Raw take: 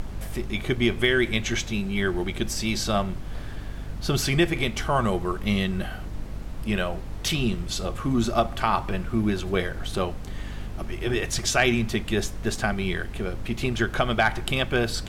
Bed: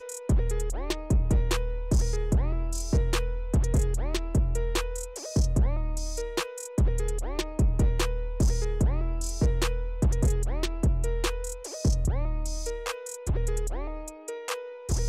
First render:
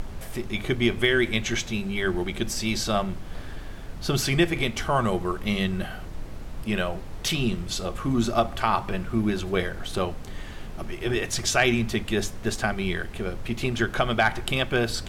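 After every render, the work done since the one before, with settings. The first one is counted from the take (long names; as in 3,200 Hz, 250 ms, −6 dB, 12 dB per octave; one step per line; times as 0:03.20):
hum removal 50 Hz, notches 6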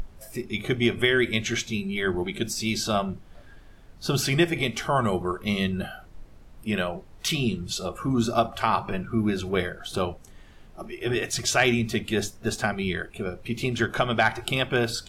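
noise reduction from a noise print 13 dB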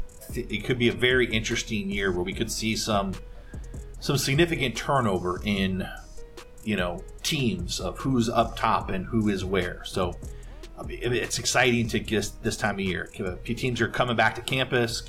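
mix in bed −15 dB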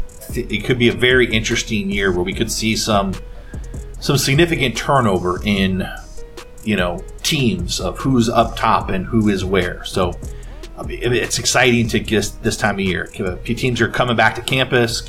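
level +9 dB
brickwall limiter −1 dBFS, peak gain reduction 3 dB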